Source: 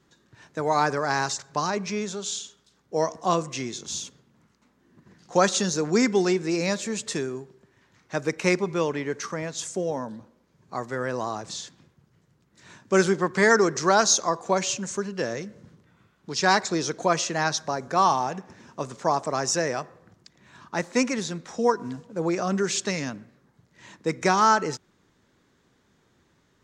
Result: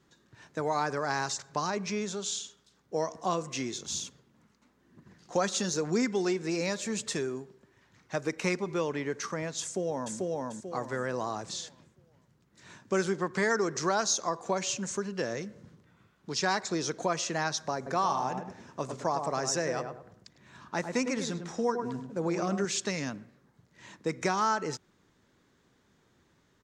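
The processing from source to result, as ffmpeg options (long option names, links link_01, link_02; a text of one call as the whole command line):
ffmpeg -i in.wav -filter_complex "[0:a]asplit=3[link_01][link_02][link_03];[link_01]afade=type=out:start_time=3.36:duration=0.02[link_04];[link_02]aphaser=in_gain=1:out_gain=1:delay=4.9:decay=0.25:speed=1:type=triangular,afade=type=in:start_time=3.36:duration=0.02,afade=type=out:start_time=8.8:duration=0.02[link_05];[link_03]afade=type=in:start_time=8.8:duration=0.02[link_06];[link_04][link_05][link_06]amix=inputs=3:normalize=0,asplit=2[link_07][link_08];[link_08]afade=type=in:start_time=9.62:duration=0.01,afade=type=out:start_time=10.16:duration=0.01,aecho=0:1:440|880|1320|1760|2200:0.841395|0.294488|0.103071|0.0360748|0.0126262[link_09];[link_07][link_09]amix=inputs=2:normalize=0,asettb=1/sr,asplit=3[link_10][link_11][link_12];[link_10]atrim=end=17.764[link_13];[link_11]atrim=start=17.76:end=22.65,asetpts=PTS-STARTPTS,afade=type=in:duration=0.004:curve=qsin,afade=type=out:start_time=4.886:duration=0.004:curve=qsin,asplit=2[link_14][link_15];[link_15]adelay=102,lowpass=frequency=1200:poles=1,volume=-6dB,asplit=2[link_16][link_17];[link_17]adelay=102,lowpass=frequency=1200:poles=1,volume=0.33,asplit=2[link_18][link_19];[link_19]adelay=102,lowpass=frequency=1200:poles=1,volume=0.33,asplit=2[link_20][link_21];[link_21]adelay=102,lowpass=frequency=1200:poles=1,volume=0.33[link_22];[link_14][link_16][link_18][link_20][link_22]amix=inputs=5:normalize=0,atrim=end_sample=215649[link_23];[link_12]atrim=start=22.646[link_24];[link_13][link_23]acrossfade=duration=0.004:curve1=hsin:curve2=qsin[link_25];[link_25][link_24]acrossfade=duration=0.004:curve1=qsin:curve2=hsin,acompressor=threshold=-26dB:ratio=2,volume=-2.5dB" out.wav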